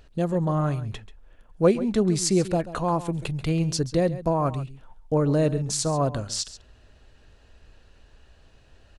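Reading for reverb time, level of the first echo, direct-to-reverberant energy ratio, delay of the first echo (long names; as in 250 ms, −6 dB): no reverb audible, −15.0 dB, no reverb audible, 136 ms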